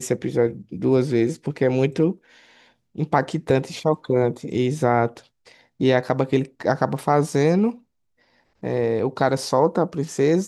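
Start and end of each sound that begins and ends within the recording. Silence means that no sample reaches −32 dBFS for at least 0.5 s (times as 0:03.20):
0:02.98–0:05.19
0:05.80–0:07.72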